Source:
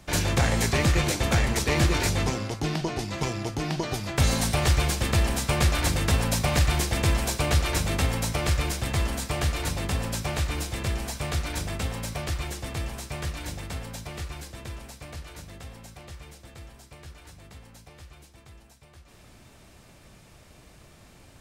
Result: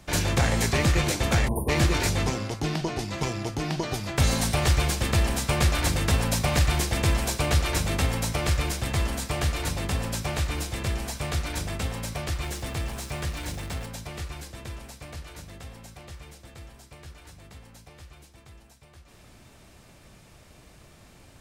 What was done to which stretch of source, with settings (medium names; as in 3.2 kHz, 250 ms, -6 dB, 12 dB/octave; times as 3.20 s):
1.48–1.69 s: spectral selection erased 1.1–8.9 kHz
12.43–13.86 s: jump at every zero crossing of -41.5 dBFS